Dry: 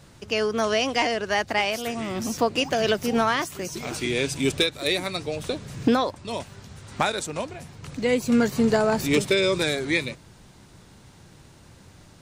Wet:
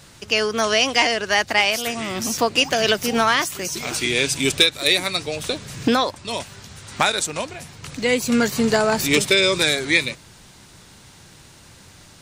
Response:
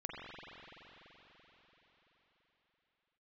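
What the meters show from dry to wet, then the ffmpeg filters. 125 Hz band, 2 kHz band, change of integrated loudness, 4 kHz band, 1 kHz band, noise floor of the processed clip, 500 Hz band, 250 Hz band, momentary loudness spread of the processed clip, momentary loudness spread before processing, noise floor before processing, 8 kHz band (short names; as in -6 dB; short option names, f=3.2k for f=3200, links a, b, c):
+0.5 dB, +7.0 dB, +5.0 dB, +8.5 dB, +4.0 dB, -47 dBFS, +2.0 dB, +1.0 dB, 13 LU, 13 LU, -51 dBFS, +9.5 dB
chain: -af "tiltshelf=f=1.2k:g=-4.5,volume=5dB"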